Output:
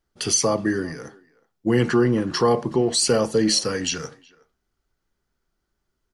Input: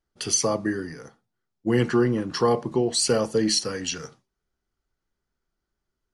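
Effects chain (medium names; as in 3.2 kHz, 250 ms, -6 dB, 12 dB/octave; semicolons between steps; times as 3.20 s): in parallel at 0 dB: peak limiter -19.5 dBFS, peak gain reduction 9 dB; on the sum: speakerphone echo 370 ms, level -23 dB; trim -1 dB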